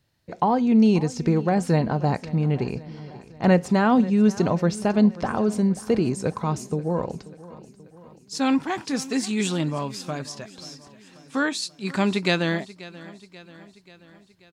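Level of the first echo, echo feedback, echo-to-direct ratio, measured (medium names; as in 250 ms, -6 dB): -18.5 dB, 57%, -17.0 dB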